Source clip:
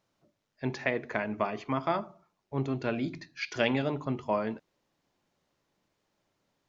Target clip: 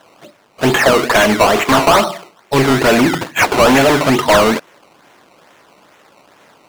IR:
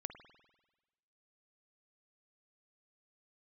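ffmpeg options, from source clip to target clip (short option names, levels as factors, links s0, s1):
-filter_complex "[0:a]acrusher=samples=18:mix=1:aa=0.000001:lfo=1:lforange=18:lforate=2.3,acontrast=86,asplit=2[s0][s1];[s1]highpass=f=720:p=1,volume=25.1,asoftclip=type=tanh:threshold=0.447[s2];[s0][s2]amix=inputs=2:normalize=0,lowpass=f=5400:p=1,volume=0.501,volume=1.78"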